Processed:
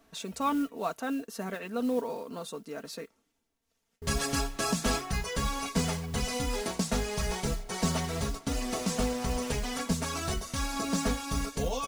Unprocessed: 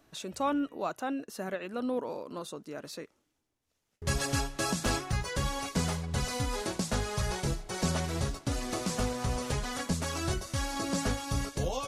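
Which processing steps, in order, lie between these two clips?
modulation noise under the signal 24 dB; comb 4.4 ms, depth 61%

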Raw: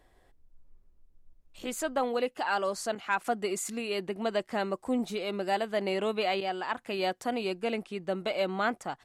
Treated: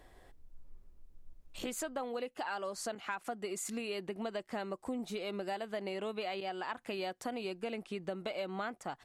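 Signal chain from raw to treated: compression 6:1, threshold -41 dBFS, peak gain reduction 16.5 dB; trim +4.5 dB

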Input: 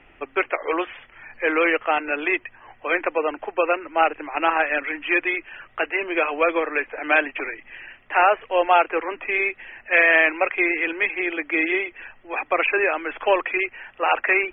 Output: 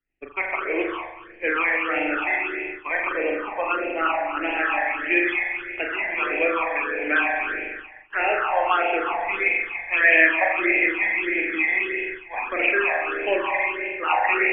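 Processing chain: spring tank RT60 1.9 s, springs 40 ms, chirp 65 ms, DRR -2 dB; phase shifter stages 8, 1.6 Hz, lowest notch 380–1200 Hz; expander -30 dBFS; trim -1 dB

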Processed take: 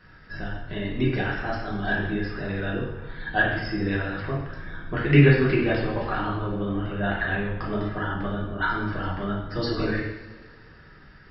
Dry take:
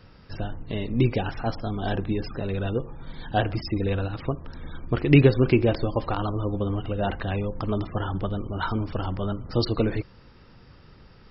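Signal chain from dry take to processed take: peaking EQ 1.7 kHz +14.5 dB 0.61 oct; two-slope reverb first 0.84 s, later 2.7 s, DRR -5.5 dB; trim -8.5 dB

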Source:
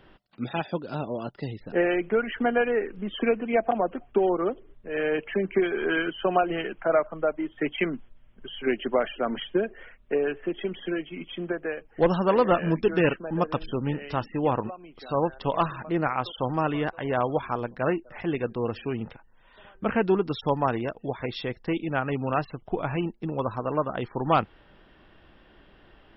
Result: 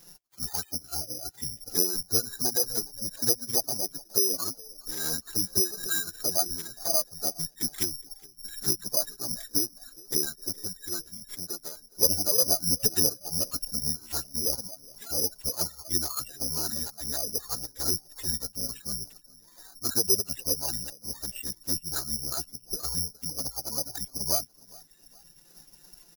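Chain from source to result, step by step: reverb removal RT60 1.3 s; in parallel at +3 dB: compression 16:1, threshold -37 dBFS, peak gain reduction 22 dB; on the sum: touch-sensitive flanger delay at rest 3.2 ms, full sweep at -17.5 dBFS; formant-preserving pitch shift -11.5 st; on a send: frequency-shifting echo 414 ms, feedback 43%, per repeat +47 Hz, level -23.5 dB; on the sum: careless resampling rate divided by 8×, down none, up zero stuff; trim -9.5 dB

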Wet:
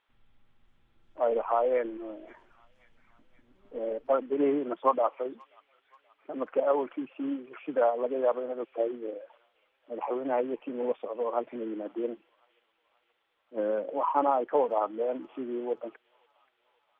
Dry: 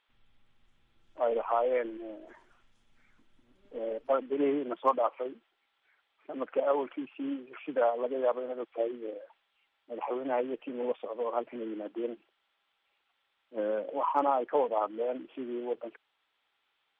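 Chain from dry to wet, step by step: treble shelf 3 kHz -10.5 dB; on a send: feedback echo behind a high-pass 529 ms, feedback 54%, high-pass 3 kHz, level -10 dB; on the sum: trim +2.5 dB

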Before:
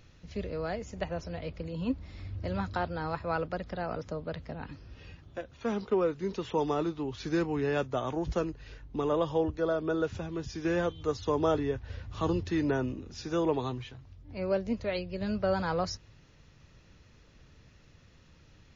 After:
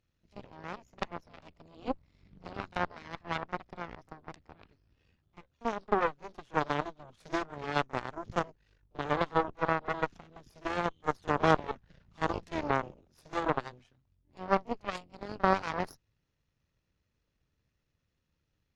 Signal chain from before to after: Chebyshev shaper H 2 -7 dB, 3 -11 dB, 7 -30 dB, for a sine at -16 dBFS; pre-echo 38 ms -20 dB; dynamic bell 1.1 kHz, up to +5 dB, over -44 dBFS, Q 0.77; trim +2 dB

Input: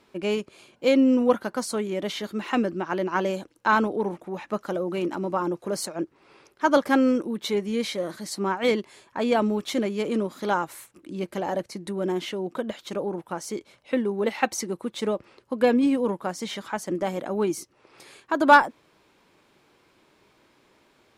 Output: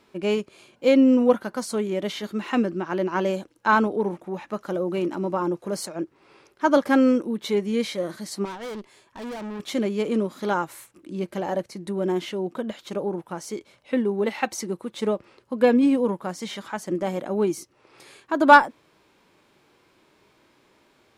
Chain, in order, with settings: 8.45–9.60 s: valve stage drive 34 dB, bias 0.7; harmonic-percussive split harmonic +5 dB; trim -2.5 dB

